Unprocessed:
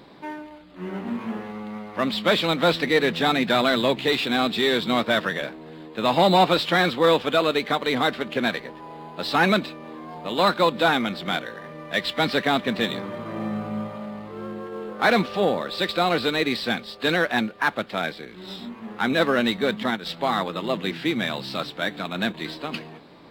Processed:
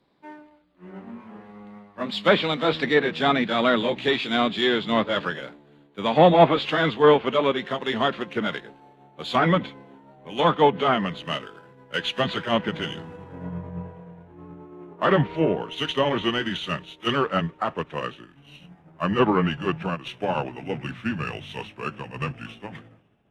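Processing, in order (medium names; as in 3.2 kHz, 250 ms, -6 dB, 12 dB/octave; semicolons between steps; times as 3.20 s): pitch bend over the whole clip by -6 st starting unshifted; low-pass that closes with the level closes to 2.8 kHz, closed at -16.5 dBFS; three bands expanded up and down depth 70%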